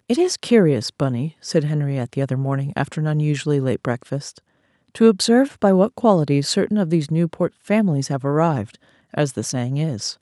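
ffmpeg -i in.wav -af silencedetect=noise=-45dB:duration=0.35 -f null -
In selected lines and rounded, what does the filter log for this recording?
silence_start: 4.39
silence_end: 4.88 | silence_duration: 0.50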